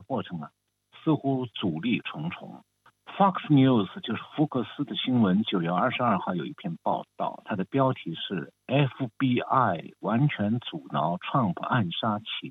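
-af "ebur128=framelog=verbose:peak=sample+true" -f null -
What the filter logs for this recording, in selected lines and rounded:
Integrated loudness:
  I:         -27.2 LUFS
  Threshold: -37.5 LUFS
Loudness range:
  LRA:         3.5 LU
  Threshold: -47.2 LUFS
  LRA low:   -29.0 LUFS
  LRA high:  -25.5 LUFS
Sample peak:
  Peak:       -7.1 dBFS
True peak:
  Peak:       -7.1 dBFS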